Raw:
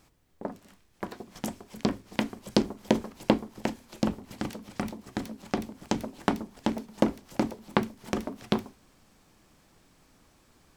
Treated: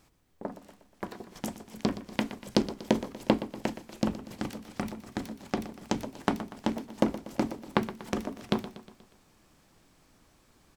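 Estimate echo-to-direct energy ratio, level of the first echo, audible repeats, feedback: -12.5 dB, -14.0 dB, 4, 53%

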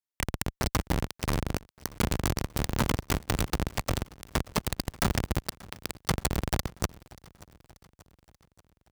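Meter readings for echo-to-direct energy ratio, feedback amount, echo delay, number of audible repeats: -20.5 dB, 56%, 584 ms, 3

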